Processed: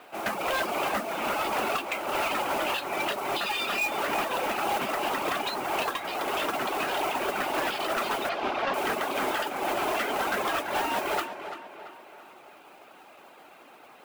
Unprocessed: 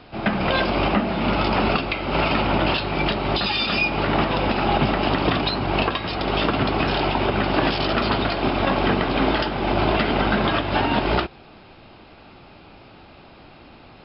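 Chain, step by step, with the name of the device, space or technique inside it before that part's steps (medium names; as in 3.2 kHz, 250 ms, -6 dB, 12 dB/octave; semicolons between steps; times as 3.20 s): reverb removal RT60 0.84 s; carbon microphone (band-pass 490–2700 Hz; saturation -23 dBFS, distortion -12 dB; modulation noise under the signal 14 dB); 8.29–8.74 s: low-pass 5 kHz 24 dB/octave; tape echo 338 ms, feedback 51%, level -8.5 dB, low-pass 3.5 kHz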